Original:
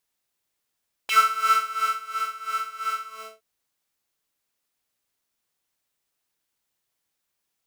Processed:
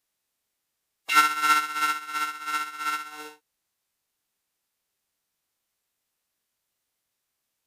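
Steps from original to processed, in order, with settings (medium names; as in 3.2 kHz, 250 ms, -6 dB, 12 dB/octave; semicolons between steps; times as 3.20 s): formant-preserving pitch shift -6.5 st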